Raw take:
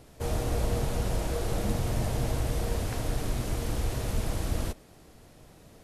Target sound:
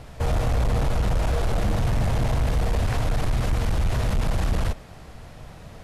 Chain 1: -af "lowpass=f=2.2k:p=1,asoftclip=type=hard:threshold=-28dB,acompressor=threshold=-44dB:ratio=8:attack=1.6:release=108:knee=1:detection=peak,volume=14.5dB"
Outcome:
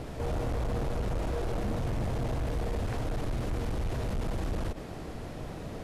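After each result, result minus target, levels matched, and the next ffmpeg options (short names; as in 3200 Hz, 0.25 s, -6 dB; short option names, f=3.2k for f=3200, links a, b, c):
compressor: peak gain reduction +9.5 dB; 250 Hz band +4.0 dB
-af "lowpass=f=2.2k:p=1,asoftclip=type=hard:threshold=-28dB,acompressor=threshold=-33dB:ratio=8:attack=1.6:release=108:knee=1:detection=peak,volume=14.5dB"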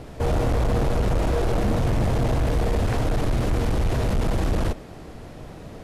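250 Hz band +3.5 dB
-af "lowpass=f=2.2k:p=1,equalizer=f=330:w=0.97:g=-10.5,asoftclip=type=hard:threshold=-28dB,acompressor=threshold=-33dB:ratio=8:attack=1.6:release=108:knee=1:detection=peak,volume=14.5dB"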